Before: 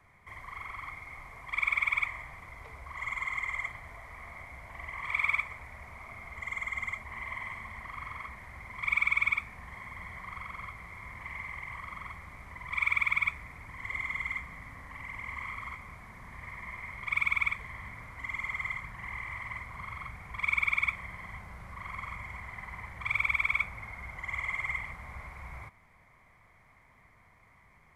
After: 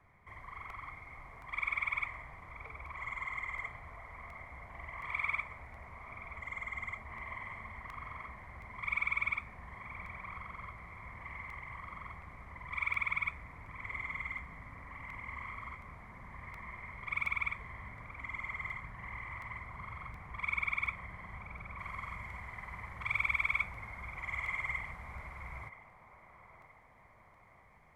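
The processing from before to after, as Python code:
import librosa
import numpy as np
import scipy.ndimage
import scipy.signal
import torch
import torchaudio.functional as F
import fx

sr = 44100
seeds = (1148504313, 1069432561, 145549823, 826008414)

y = fx.high_shelf(x, sr, hz=2800.0, db=fx.steps((0.0, -11.0), (21.78, -4.0)))
y = fx.echo_banded(y, sr, ms=976, feedback_pct=65, hz=560.0, wet_db=-8.0)
y = fx.buffer_crackle(y, sr, first_s=0.7, period_s=0.72, block=64, kind='repeat')
y = y * 10.0 ** (-2.0 / 20.0)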